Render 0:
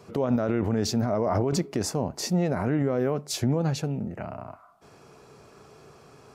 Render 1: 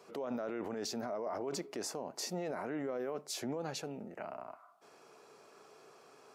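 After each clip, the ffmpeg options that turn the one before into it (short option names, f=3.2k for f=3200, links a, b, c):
-af "highpass=360,alimiter=level_in=0.5dB:limit=-24dB:level=0:latency=1:release=30,volume=-0.5dB,volume=-5.5dB"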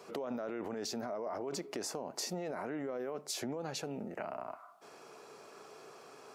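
-af "acompressor=threshold=-41dB:ratio=6,volume=5.5dB"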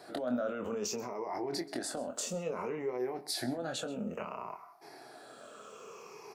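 -filter_complex "[0:a]afftfilt=real='re*pow(10,13/40*sin(2*PI*(0.79*log(max(b,1)*sr/1024/100)/log(2)-(-0.59)*(pts-256)/sr)))':imag='im*pow(10,13/40*sin(2*PI*(0.79*log(max(b,1)*sr/1024/100)/log(2)-(-0.59)*(pts-256)/sr)))':win_size=1024:overlap=0.75,asplit=2[a][b];[b]adelay=24,volume=-6dB[c];[a][c]amix=inputs=2:normalize=0,aecho=1:1:130:0.106"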